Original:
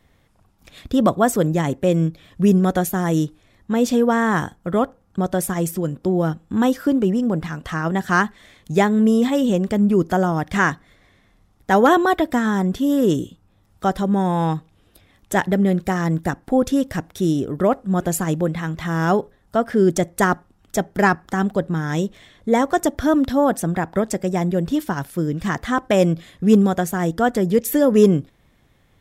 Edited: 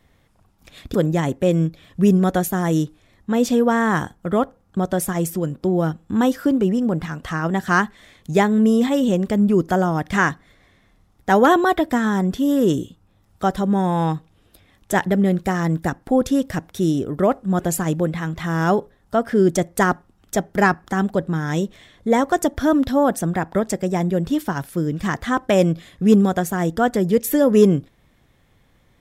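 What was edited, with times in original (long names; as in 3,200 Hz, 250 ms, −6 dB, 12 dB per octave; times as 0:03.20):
0:00.94–0:01.35: remove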